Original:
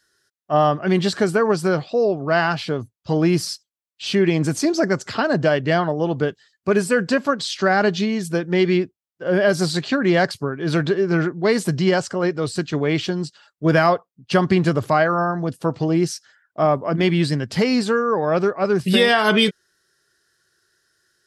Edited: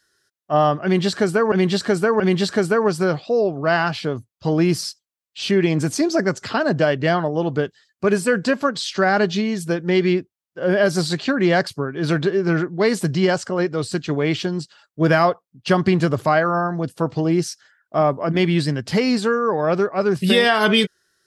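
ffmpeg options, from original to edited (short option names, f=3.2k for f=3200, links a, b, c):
-filter_complex "[0:a]asplit=3[a][b][c];[a]atrim=end=1.522[d];[b]atrim=start=0.838:end=1.522[e];[c]atrim=start=0.838[f];[d][e]acrossfade=d=0.004:c1=hsin:c2=hsin[g];[g][f]acrossfade=d=0.004:c1=hsin:c2=hsin"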